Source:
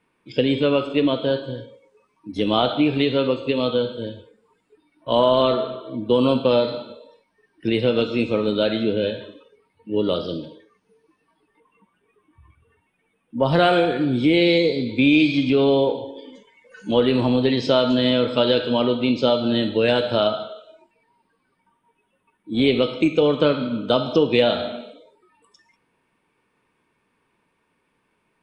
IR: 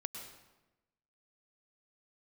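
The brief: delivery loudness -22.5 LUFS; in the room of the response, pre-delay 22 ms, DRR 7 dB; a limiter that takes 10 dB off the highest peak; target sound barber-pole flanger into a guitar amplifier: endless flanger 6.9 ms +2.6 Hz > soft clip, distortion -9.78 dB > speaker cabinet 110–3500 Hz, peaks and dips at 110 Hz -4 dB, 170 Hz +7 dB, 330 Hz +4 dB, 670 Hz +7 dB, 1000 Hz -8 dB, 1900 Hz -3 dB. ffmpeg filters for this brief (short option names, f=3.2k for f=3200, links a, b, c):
-filter_complex "[0:a]alimiter=limit=-14dB:level=0:latency=1,asplit=2[a][b];[1:a]atrim=start_sample=2205,adelay=22[c];[b][c]afir=irnorm=-1:irlink=0,volume=-6dB[d];[a][d]amix=inputs=2:normalize=0,asplit=2[e][f];[f]adelay=6.9,afreqshift=2.6[g];[e][g]amix=inputs=2:normalize=1,asoftclip=threshold=-25.5dB,highpass=110,equalizer=f=110:t=q:w=4:g=-4,equalizer=f=170:t=q:w=4:g=7,equalizer=f=330:t=q:w=4:g=4,equalizer=f=670:t=q:w=4:g=7,equalizer=f=1k:t=q:w=4:g=-8,equalizer=f=1.9k:t=q:w=4:g=-3,lowpass=f=3.5k:w=0.5412,lowpass=f=3.5k:w=1.3066,volume=7dB"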